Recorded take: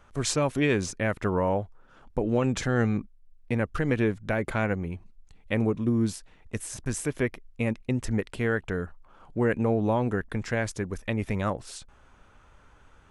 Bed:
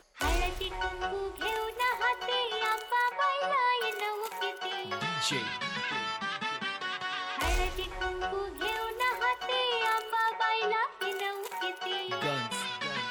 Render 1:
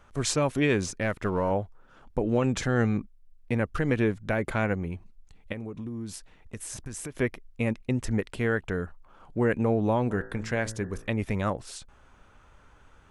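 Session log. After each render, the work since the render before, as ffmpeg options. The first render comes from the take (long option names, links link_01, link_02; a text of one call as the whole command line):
ffmpeg -i in.wav -filter_complex "[0:a]asettb=1/sr,asplit=3[link_01][link_02][link_03];[link_01]atrim=end=1.014[link_04];[link_02]atrim=start=1.01:end=1.51,asetpts=PTS-STARTPTS,afade=type=in:duration=0.004:curve=qsin,afade=type=out:start_time=0.496:duration=0.004:curve=qsin,aeval=exprs='if(lt(val(0),0),0.708*val(0),val(0))':channel_layout=same[link_05];[link_03]atrim=start=1.506[link_06];[link_04][link_05]acrossfade=duration=0.004:curve1=hsin:curve2=qsin[link_07];[link_07][link_06]acrossfade=duration=0.004:curve1=qsin:curve2=hsin,asettb=1/sr,asplit=3[link_08][link_09][link_10];[link_08]atrim=end=5.524[link_11];[link_09]atrim=start=5.52:end=7.19,asetpts=PTS-STARTPTS,afade=type=in:duration=0.004:curve=qsin,afade=type=out:start_time=1.666:duration=0.004:curve=qsin,acompressor=threshold=-33dB:ratio=6:attack=3.2:release=140:knee=1:detection=peak[link_12];[link_10]atrim=start=7.186[link_13];[link_11][link_12]acrossfade=duration=0.004:curve1=hsin:curve2=qsin[link_14];[link_14][link_13]acrossfade=duration=0.004:curve1=qsin:curve2=hsin,asplit=3[link_15][link_16][link_17];[link_15]afade=type=out:start_time=10.09:duration=0.02[link_18];[link_16]bandreject=frequency=55.27:width_type=h:width=4,bandreject=frequency=110.54:width_type=h:width=4,bandreject=frequency=165.81:width_type=h:width=4,bandreject=frequency=221.08:width_type=h:width=4,bandreject=frequency=276.35:width_type=h:width=4,bandreject=frequency=331.62:width_type=h:width=4,bandreject=frequency=386.89:width_type=h:width=4,bandreject=frequency=442.16:width_type=h:width=4,bandreject=frequency=497.43:width_type=h:width=4,bandreject=frequency=552.7:width_type=h:width=4,bandreject=frequency=607.97:width_type=h:width=4,bandreject=frequency=663.24:width_type=h:width=4,bandreject=frequency=718.51:width_type=h:width=4,bandreject=frequency=773.78:width_type=h:width=4,bandreject=frequency=829.05:width_type=h:width=4,bandreject=frequency=884.32:width_type=h:width=4,bandreject=frequency=939.59:width_type=h:width=4,bandreject=frequency=994.86:width_type=h:width=4,bandreject=frequency=1050.13:width_type=h:width=4,bandreject=frequency=1105.4:width_type=h:width=4,bandreject=frequency=1160.67:width_type=h:width=4,bandreject=frequency=1215.94:width_type=h:width=4,bandreject=frequency=1271.21:width_type=h:width=4,bandreject=frequency=1326.48:width_type=h:width=4,bandreject=frequency=1381.75:width_type=h:width=4,bandreject=frequency=1437.02:width_type=h:width=4,bandreject=frequency=1492.29:width_type=h:width=4,bandreject=frequency=1547.56:width_type=h:width=4,bandreject=frequency=1602.83:width_type=h:width=4,bandreject=frequency=1658.1:width_type=h:width=4,bandreject=frequency=1713.37:width_type=h:width=4,bandreject=frequency=1768.64:width_type=h:width=4,bandreject=frequency=1823.91:width_type=h:width=4,bandreject=frequency=1879.18:width_type=h:width=4,bandreject=frequency=1934.45:width_type=h:width=4,afade=type=in:start_time=10.09:duration=0.02,afade=type=out:start_time=11.07:duration=0.02[link_19];[link_17]afade=type=in:start_time=11.07:duration=0.02[link_20];[link_18][link_19][link_20]amix=inputs=3:normalize=0" out.wav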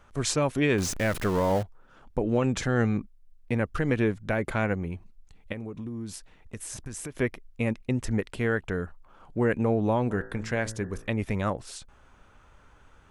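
ffmpeg -i in.wav -filter_complex "[0:a]asettb=1/sr,asplit=3[link_01][link_02][link_03];[link_01]atrim=end=0.784[link_04];[link_02]atrim=start=0.78:end=1.63,asetpts=PTS-STARTPTS,afade=type=in:duration=0.004:curve=qsin,afade=type=out:start_time=0.846:duration=0.004:curve=qsin,aeval=exprs='val(0)+0.5*0.0299*sgn(val(0))':channel_layout=same[link_05];[link_03]atrim=start=1.626[link_06];[link_04][link_05]acrossfade=duration=0.004:curve1=hsin:curve2=qsin[link_07];[link_07][link_06]acrossfade=duration=0.004:curve1=qsin:curve2=hsin" out.wav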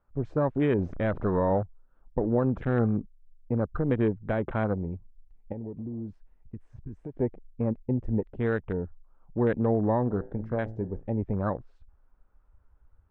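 ffmpeg -i in.wav -af "lowpass=1300,afwtdn=0.0141" out.wav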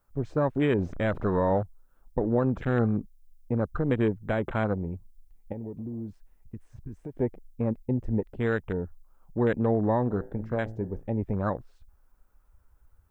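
ffmpeg -i in.wav -af "crystalizer=i=3.5:c=0" out.wav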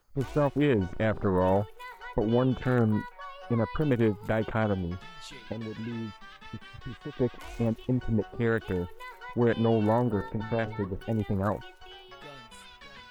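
ffmpeg -i in.wav -i bed.wav -filter_complex "[1:a]volume=-14.5dB[link_01];[0:a][link_01]amix=inputs=2:normalize=0" out.wav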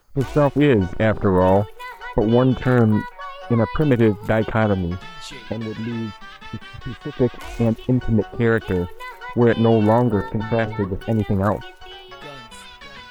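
ffmpeg -i in.wav -af "volume=9dB" out.wav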